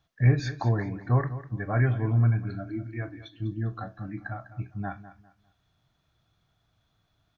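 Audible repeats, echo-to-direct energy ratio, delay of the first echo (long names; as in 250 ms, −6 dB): 2, −14.0 dB, 200 ms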